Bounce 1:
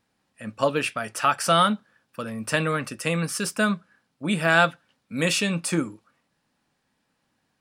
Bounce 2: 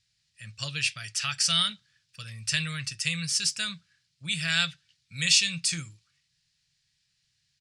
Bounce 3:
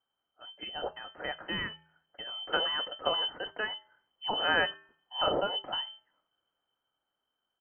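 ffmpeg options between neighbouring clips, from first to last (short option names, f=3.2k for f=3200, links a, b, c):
-af "firequalizer=gain_entry='entry(140,0);entry(230,-27);entry(910,-24);entry(1900,-3);entry(4500,9);entry(7100,6);entry(13000,-15)':delay=0.05:min_phase=1"
-af "bandreject=f=233.8:t=h:w=4,bandreject=f=467.6:t=h:w=4,bandreject=f=701.4:t=h:w=4,bandreject=f=935.2:t=h:w=4,bandreject=f=1.169k:t=h:w=4,bandreject=f=1.4028k:t=h:w=4,bandreject=f=1.6366k:t=h:w=4,bandreject=f=1.8704k:t=h:w=4,bandreject=f=2.1042k:t=h:w=4,bandreject=f=2.338k:t=h:w=4,bandreject=f=2.5718k:t=h:w=4,bandreject=f=2.8056k:t=h:w=4,bandreject=f=3.0394k:t=h:w=4,bandreject=f=3.2732k:t=h:w=4,bandreject=f=3.507k:t=h:w=4,bandreject=f=3.7408k:t=h:w=4,bandreject=f=3.9746k:t=h:w=4,bandreject=f=4.2084k:t=h:w=4,bandreject=f=4.4422k:t=h:w=4,bandreject=f=4.676k:t=h:w=4,bandreject=f=4.9098k:t=h:w=4,bandreject=f=5.1436k:t=h:w=4,bandreject=f=5.3774k:t=h:w=4,bandreject=f=5.6112k:t=h:w=4,bandreject=f=5.845k:t=h:w=4,bandreject=f=6.0788k:t=h:w=4,bandreject=f=6.3126k:t=h:w=4,bandreject=f=6.5464k:t=h:w=4,bandreject=f=6.7802k:t=h:w=4,bandreject=f=7.014k:t=h:w=4,lowpass=f=2.7k:t=q:w=0.5098,lowpass=f=2.7k:t=q:w=0.6013,lowpass=f=2.7k:t=q:w=0.9,lowpass=f=2.7k:t=q:w=2.563,afreqshift=-3200,dynaudnorm=f=290:g=13:m=7dB,volume=-4.5dB"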